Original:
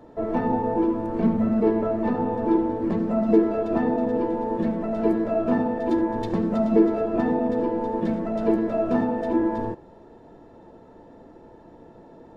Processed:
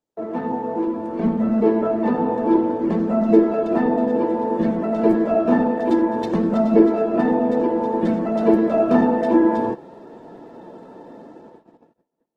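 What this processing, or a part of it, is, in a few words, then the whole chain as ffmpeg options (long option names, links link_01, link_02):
video call: -af "highpass=frequency=150:width=0.5412,highpass=frequency=150:width=1.3066,dynaudnorm=framelen=430:gausssize=7:maxgain=14.5dB,agate=range=-36dB:threshold=-41dB:ratio=16:detection=peak,volume=-1.5dB" -ar 48000 -c:a libopus -b:a 16k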